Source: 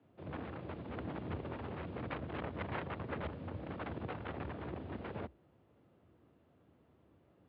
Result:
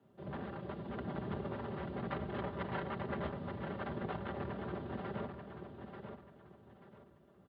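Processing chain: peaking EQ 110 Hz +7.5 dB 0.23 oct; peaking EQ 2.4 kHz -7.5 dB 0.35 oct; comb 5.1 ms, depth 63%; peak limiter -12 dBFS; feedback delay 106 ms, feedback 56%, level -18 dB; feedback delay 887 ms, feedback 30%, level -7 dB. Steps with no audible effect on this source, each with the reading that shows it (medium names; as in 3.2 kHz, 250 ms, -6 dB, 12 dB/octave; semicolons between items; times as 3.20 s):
peak limiter -12 dBFS: peak at its input -25.0 dBFS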